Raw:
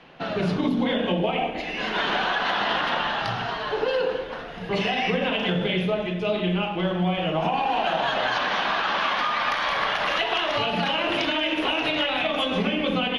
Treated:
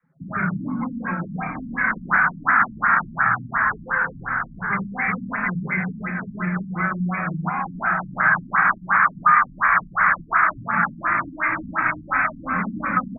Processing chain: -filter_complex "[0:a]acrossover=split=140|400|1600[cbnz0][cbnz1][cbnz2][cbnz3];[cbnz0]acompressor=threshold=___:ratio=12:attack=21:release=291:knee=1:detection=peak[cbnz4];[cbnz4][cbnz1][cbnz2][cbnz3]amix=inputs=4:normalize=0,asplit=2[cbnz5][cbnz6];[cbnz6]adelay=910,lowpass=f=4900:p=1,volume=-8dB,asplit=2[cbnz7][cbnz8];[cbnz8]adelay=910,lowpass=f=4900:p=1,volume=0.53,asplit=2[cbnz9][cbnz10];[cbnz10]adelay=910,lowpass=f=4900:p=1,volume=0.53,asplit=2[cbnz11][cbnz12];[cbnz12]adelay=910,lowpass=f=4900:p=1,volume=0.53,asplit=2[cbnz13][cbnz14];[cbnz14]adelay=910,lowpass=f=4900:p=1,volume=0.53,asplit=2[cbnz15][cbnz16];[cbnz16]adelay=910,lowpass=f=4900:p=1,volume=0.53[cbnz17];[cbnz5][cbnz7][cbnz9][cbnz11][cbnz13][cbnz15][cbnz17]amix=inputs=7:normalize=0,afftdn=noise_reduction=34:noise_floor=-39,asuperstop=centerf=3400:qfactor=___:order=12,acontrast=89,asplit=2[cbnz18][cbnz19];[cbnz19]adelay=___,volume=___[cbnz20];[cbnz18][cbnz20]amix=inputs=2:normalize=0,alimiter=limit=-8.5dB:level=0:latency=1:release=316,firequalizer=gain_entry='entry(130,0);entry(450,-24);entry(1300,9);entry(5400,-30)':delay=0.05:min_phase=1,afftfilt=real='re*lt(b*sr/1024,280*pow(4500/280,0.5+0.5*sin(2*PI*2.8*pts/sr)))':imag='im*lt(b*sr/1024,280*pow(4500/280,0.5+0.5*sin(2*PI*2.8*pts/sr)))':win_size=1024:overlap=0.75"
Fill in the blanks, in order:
-48dB, 1.3, 31, -11.5dB